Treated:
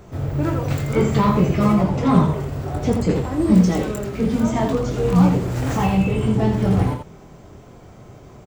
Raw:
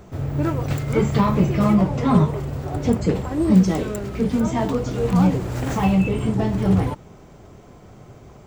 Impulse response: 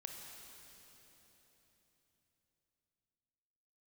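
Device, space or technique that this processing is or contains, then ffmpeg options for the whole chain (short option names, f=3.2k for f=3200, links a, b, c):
slapback doubling: -filter_complex "[0:a]asplit=3[a][b][c];[b]adelay=23,volume=-6.5dB[d];[c]adelay=83,volume=-6dB[e];[a][d][e]amix=inputs=3:normalize=0"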